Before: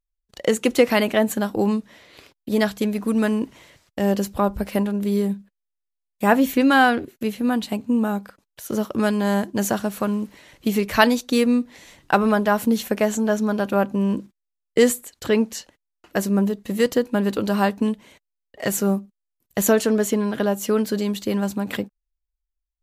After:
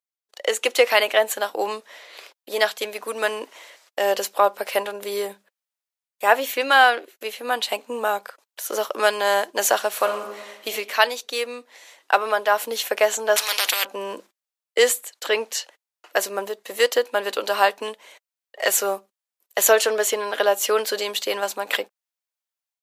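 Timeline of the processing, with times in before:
0:09.90–0:10.73: thrown reverb, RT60 1.2 s, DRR 5 dB
0:13.36–0:13.85: every bin compressed towards the loudest bin 10 to 1
whole clip: high-pass filter 490 Hz 24 dB per octave; dynamic equaliser 3,100 Hz, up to +4 dB, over −42 dBFS, Q 1.1; automatic gain control gain up to 7.5 dB; level −1 dB

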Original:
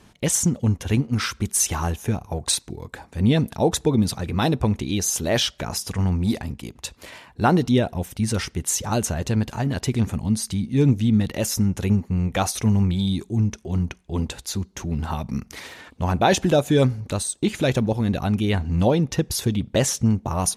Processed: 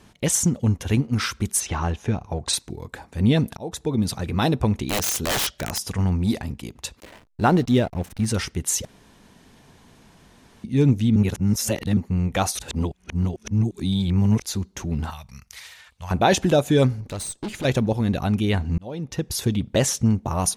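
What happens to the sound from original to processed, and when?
0:01.59–0:02.52: low-pass filter 3,600 Hz → 7,000 Hz
0:03.57–0:04.18: fade in, from −20.5 dB
0:04.85–0:05.78: wrap-around overflow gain 17.5 dB
0:07.00–0:08.26: slack as between gear wheels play −33.5 dBFS
0:08.85–0:10.64: fill with room tone
0:11.16–0:11.97: reverse
0:12.59–0:14.42: reverse
0:15.10–0:16.11: guitar amp tone stack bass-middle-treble 10-0-10
0:17.01–0:17.65: tube saturation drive 26 dB, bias 0.5
0:18.78–0:19.47: fade in

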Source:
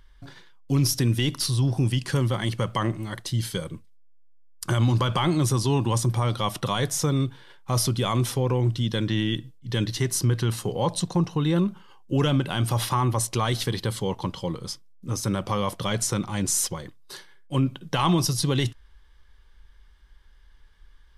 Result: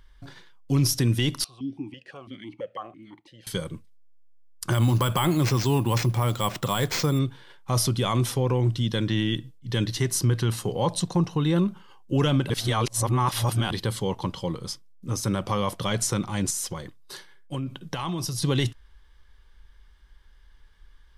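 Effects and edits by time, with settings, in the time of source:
0:01.44–0:03.47: formant filter that steps through the vowels 6 Hz
0:04.72–0:07.19: bad sample-rate conversion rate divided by 4×, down none, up hold
0:12.50–0:13.71: reverse
0:16.50–0:18.42: downward compressor, threshold −26 dBFS

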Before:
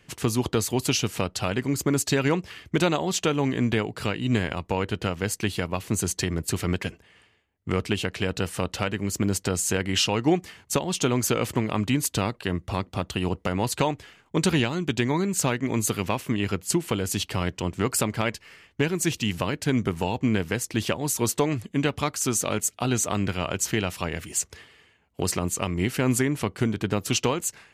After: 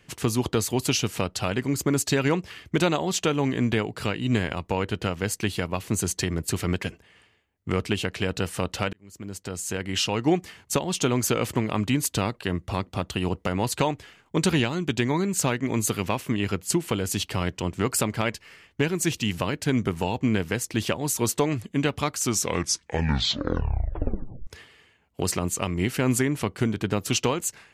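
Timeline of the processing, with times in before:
0:08.93–0:10.36: fade in
0:22.19: tape stop 2.28 s

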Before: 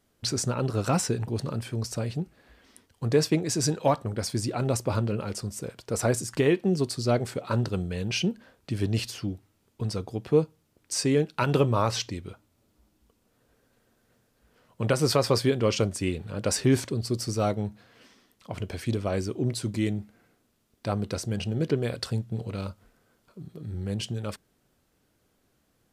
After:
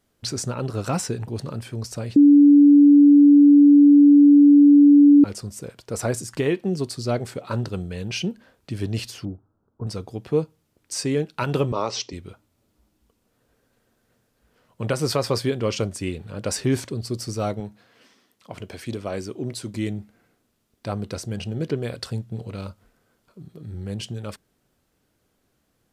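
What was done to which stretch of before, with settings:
0:02.16–0:05.24: beep over 288 Hz −8 dBFS
0:09.25–0:09.87: Butterworth low-pass 1,500 Hz 72 dB per octave
0:11.72–0:12.13: loudspeaker in its box 220–7,000 Hz, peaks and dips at 400 Hz +6 dB, 1,600 Hz −10 dB, 5,500 Hz +5 dB
0:17.60–0:19.75: high-pass filter 170 Hz 6 dB per octave

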